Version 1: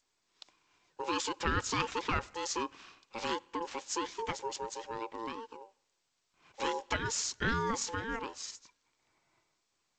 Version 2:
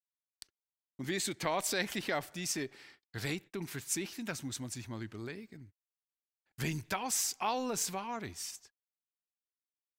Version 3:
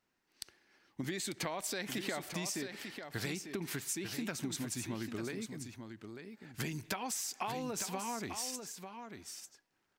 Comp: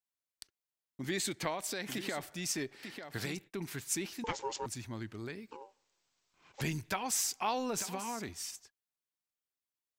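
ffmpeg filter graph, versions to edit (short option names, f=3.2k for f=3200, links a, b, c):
-filter_complex "[2:a]asplit=3[a][b][c];[0:a]asplit=2[d][e];[1:a]asplit=6[f][g][h][i][j][k];[f]atrim=end=1.58[l];[a]atrim=start=1.42:end=2.29[m];[g]atrim=start=2.13:end=2.832[n];[b]atrim=start=2.828:end=3.372[o];[h]atrim=start=3.368:end=4.242[p];[d]atrim=start=4.238:end=4.662[q];[i]atrim=start=4.658:end=5.512[r];[e]atrim=start=5.508:end=6.612[s];[j]atrim=start=6.608:end=7.802[t];[c]atrim=start=7.798:end=8.292[u];[k]atrim=start=8.288[v];[l][m]acrossfade=d=0.16:c1=tri:c2=tri[w];[w][n]acrossfade=d=0.16:c1=tri:c2=tri[x];[x][o]acrossfade=d=0.004:c1=hsin:c2=hsin[y];[y][p]acrossfade=d=0.004:c1=hsin:c2=hsin[z];[z][q]acrossfade=d=0.004:c1=hsin:c2=hsin[aa];[aa][r]acrossfade=d=0.004:c1=hsin:c2=hsin[ab];[ab][s]acrossfade=d=0.004:c1=hsin:c2=hsin[ac];[ac][t]acrossfade=d=0.004:c1=hsin:c2=hsin[ad];[ad][u]acrossfade=d=0.004:c1=hsin:c2=hsin[ae];[ae][v]acrossfade=d=0.004:c1=hsin:c2=hsin"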